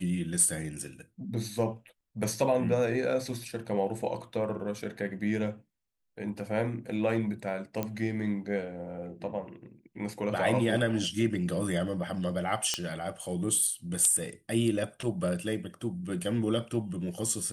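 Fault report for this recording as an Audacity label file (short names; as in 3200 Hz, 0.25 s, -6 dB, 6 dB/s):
7.830000	7.830000	pop -17 dBFS
12.740000	12.740000	pop -12 dBFS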